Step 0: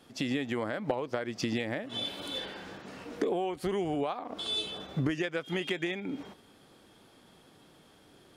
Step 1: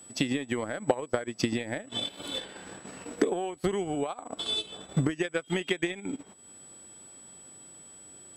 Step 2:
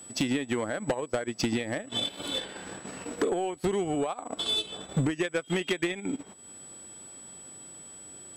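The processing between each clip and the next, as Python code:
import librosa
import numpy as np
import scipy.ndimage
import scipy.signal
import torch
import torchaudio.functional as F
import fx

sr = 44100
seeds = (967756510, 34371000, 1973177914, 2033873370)

y1 = x + 10.0 ** (-48.0 / 20.0) * np.sin(2.0 * np.pi * 7900.0 * np.arange(len(x)) / sr)
y1 = fx.transient(y1, sr, attack_db=7, sustain_db=-11)
y2 = 10.0 ** (-23.5 / 20.0) * np.tanh(y1 / 10.0 ** (-23.5 / 20.0))
y2 = y2 * 10.0 ** (3.5 / 20.0)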